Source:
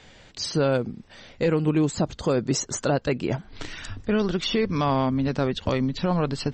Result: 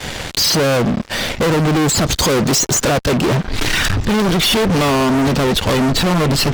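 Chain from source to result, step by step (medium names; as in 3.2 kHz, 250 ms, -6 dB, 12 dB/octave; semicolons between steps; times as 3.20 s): 2.05–2.56 s: treble shelf 3 kHz +12 dB; in parallel at +0.5 dB: compression 5:1, threshold -34 dBFS, peak gain reduction 14.5 dB; on the sum: fuzz box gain 37 dB, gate -46 dBFS; gate with hold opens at -16 dBFS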